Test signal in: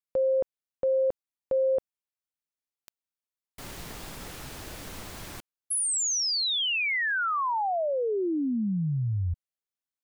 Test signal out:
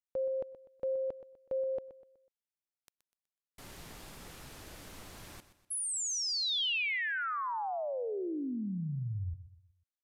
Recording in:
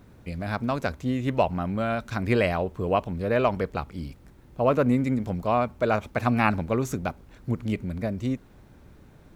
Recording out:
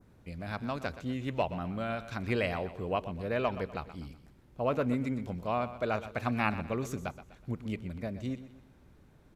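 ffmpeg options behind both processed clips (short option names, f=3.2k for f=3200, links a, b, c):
-af "aresample=32000,aresample=44100,adynamicequalizer=threshold=0.00562:dfrequency=3100:dqfactor=1:tfrequency=3100:tqfactor=1:attack=5:release=100:ratio=0.375:range=2:mode=boostabove:tftype=bell,aecho=1:1:124|248|372|496:0.211|0.0845|0.0338|0.0135,volume=-8.5dB"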